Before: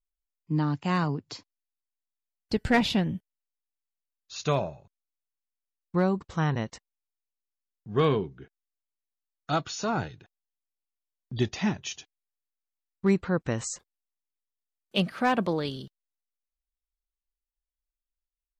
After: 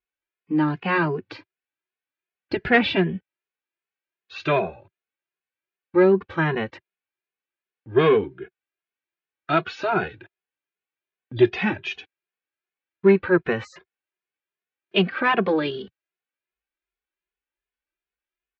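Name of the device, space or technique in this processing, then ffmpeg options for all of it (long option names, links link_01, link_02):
barber-pole flanger into a guitar amplifier: -filter_complex "[0:a]asplit=2[link_01][link_02];[link_02]adelay=2.4,afreqshift=2.6[link_03];[link_01][link_03]amix=inputs=2:normalize=1,asoftclip=type=tanh:threshold=-18dB,highpass=97,equalizer=frequency=140:width_type=q:width=4:gain=-8,equalizer=frequency=230:width_type=q:width=4:gain=-5,equalizer=frequency=370:width_type=q:width=4:gain=9,equalizer=frequency=1600:width_type=q:width=4:gain=8,equalizer=frequency=2400:width_type=q:width=4:gain=7,lowpass=frequency=3500:width=0.5412,lowpass=frequency=3500:width=1.3066,volume=8.5dB"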